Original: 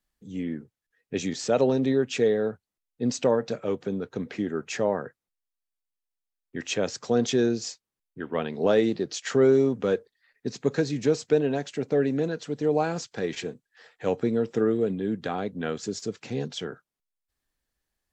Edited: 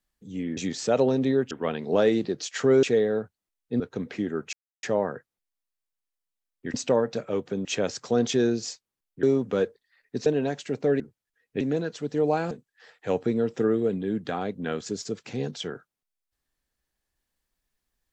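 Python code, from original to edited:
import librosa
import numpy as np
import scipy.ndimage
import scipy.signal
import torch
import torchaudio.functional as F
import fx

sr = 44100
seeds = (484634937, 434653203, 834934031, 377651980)

y = fx.edit(x, sr, fx.move(start_s=0.57, length_s=0.61, to_s=12.08),
    fx.move(start_s=3.09, length_s=0.91, to_s=6.64),
    fx.insert_silence(at_s=4.73, length_s=0.3),
    fx.move(start_s=8.22, length_s=1.32, to_s=2.12),
    fx.cut(start_s=10.57, length_s=0.77),
    fx.cut(start_s=12.98, length_s=0.5), tone=tone)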